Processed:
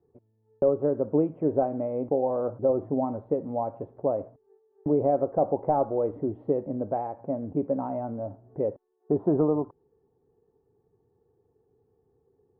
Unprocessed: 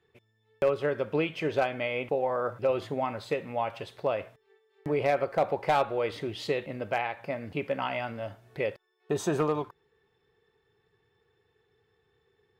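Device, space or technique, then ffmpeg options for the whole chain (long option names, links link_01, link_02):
under water: -af "lowpass=frequency=820:width=0.5412,lowpass=frequency=820:width=1.3066,equalizer=frequency=270:width_type=o:width=0.47:gain=8,volume=2.5dB"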